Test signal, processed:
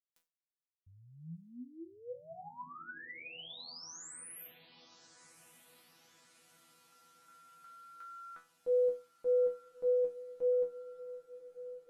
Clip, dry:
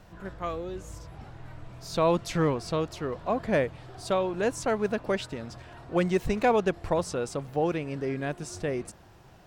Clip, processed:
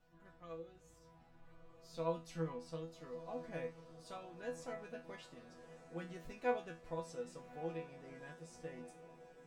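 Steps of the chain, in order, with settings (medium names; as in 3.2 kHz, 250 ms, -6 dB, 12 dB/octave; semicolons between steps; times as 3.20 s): chord resonator E3 fifth, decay 0.28 s; echo that smears into a reverb 1244 ms, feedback 60%, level -14 dB; trim -5 dB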